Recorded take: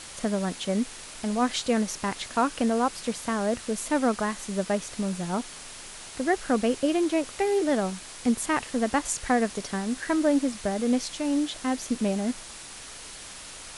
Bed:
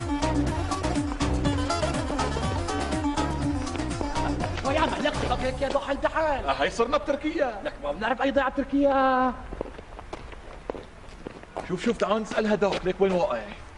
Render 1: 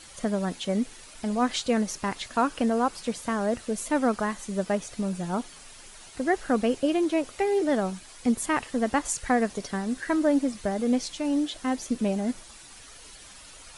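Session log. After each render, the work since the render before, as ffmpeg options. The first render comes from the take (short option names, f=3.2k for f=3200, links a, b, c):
-af "afftdn=nr=9:nf=-43"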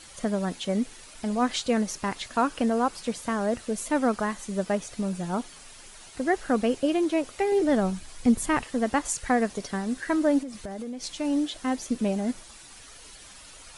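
-filter_complex "[0:a]asettb=1/sr,asplit=3[a][b][c];[a]atrim=end=7.524[d];[b]atrim=start=7.52:end=8.63,asetpts=PTS-STARTPTS,afade=t=in:d=0.004:c=qsin,afade=t=out:st=1.106:d=0.004:c=qsin,lowshelf=f=150:g=11.5[e];[c]atrim=start=8.626[f];[d][e]acrossfade=d=0.004:c1=hsin:c2=qsin[g];[g][f]acrossfade=d=0.004:c1=qsin:c2=hsin,asettb=1/sr,asplit=3[h][i][j];[h]atrim=end=10.414[k];[i]atrim=start=10.41:end=11.04,asetpts=PTS-STARTPTS,afade=t=in:d=0.004:c=qsin,afade=t=out:st=0.626:d=0.004:c=qsin,acompressor=threshold=-31dB:ratio=16:attack=3.2:release=140:knee=1:detection=peak[l];[j]atrim=start=11.036[m];[k][l]acrossfade=d=0.004:c1=hsin:c2=qsin[n];[n][m]acrossfade=d=0.004:c1=qsin:c2=hsin"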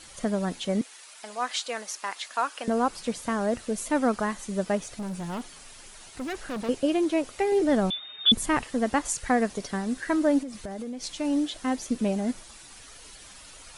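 -filter_complex "[0:a]asettb=1/sr,asplit=3[a][b][c];[a]atrim=end=0.814[d];[b]atrim=start=0.81:end=2.68,asetpts=PTS-STARTPTS,afade=t=in:d=0.004:c=qsin,afade=t=out:st=1.866:d=0.004:c=qsin,highpass=760[e];[c]atrim=start=2.676[f];[d][e]acrossfade=d=0.004:c1=hsin:c2=qsin[g];[g][f]acrossfade=d=0.004:c1=qsin:c2=hsin,asettb=1/sr,asplit=3[h][i][j];[h]atrim=end=4.794[k];[i]atrim=start=4.79:end=6.69,asetpts=PTS-STARTPTS,afade=t=in:d=0.004:c=qsin,afade=t=out:st=1.896:d=0.004:c=qsin,volume=30.5dB,asoftclip=hard,volume=-30.5dB[l];[j]atrim=start=6.686[m];[k][l]acrossfade=d=0.004:c1=hsin:c2=qsin[n];[n][m]acrossfade=d=0.004:c1=qsin:c2=hsin,asettb=1/sr,asplit=3[o][p][q];[o]atrim=end=7.904[r];[p]atrim=start=7.9:end=8.32,asetpts=PTS-STARTPTS,afade=t=in:d=0.004:c=qsin,afade=t=out:st=0.416:d=0.004:c=qsin,lowpass=f=3.1k:t=q:w=0.5098,lowpass=f=3.1k:t=q:w=0.6013,lowpass=f=3.1k:t=q:w=0.9,lowpass=f=3.1k:t=q:w=2.563,afreqshift=-3700[s];[q]atrim=start=8.316[t];[r][s]acrossfade=d=0.004:c1=hsin:c2=qsin[u];[u][t]acrossfade=d=0.004:c1=qsin:c2=hsin"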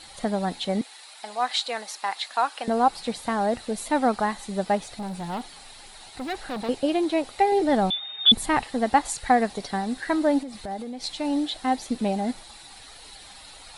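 -af "equalizer=f=800:t=o:w=0.33:g=11,equalizer=f=2k:t=o:w=0.33:g=3,equalizer=f=4k:t=o:w=0.33:g=10,equalizer=f=6.3k:t=o:w=0.33:g=-6"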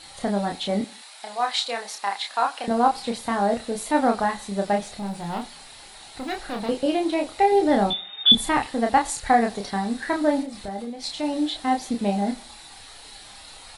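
-filter_complex "[0:a]asplit=2[a][b];[b]adelay=30,volume=-4dB[c];[a][c]amix=inputs=2:normalize=0,aecho=1:1:86|172:0.0668|0.0254"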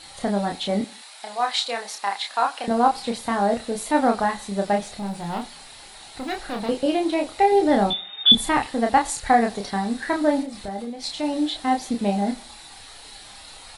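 -af "volume=1dB"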